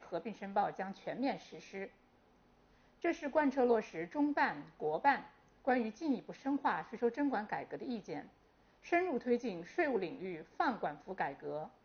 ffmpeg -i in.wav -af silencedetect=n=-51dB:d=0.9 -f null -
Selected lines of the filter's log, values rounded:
silence_start: 1.87
silence_end: 3.03 | silence_duration: 1.16